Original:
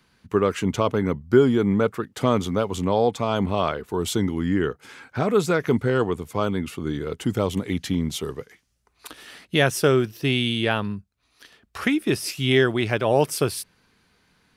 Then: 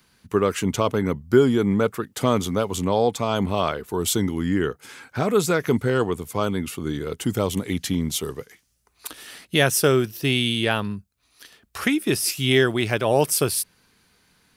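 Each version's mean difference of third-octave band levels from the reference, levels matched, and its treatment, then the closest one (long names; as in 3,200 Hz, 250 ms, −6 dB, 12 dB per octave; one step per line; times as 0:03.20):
2.0 dB: high-shelf EQ 6,400 Hz +11.5 dB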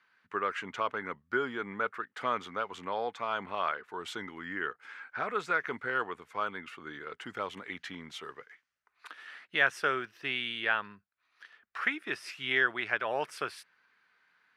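7.0 dB: resonant band-pass 1,600 Hz, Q 1.9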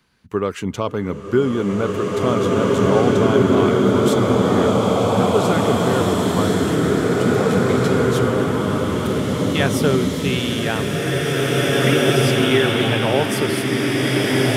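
11.0 dB: slow-attack reverb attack 2,400 ms, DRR −6.5 dB
level −1 dB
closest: first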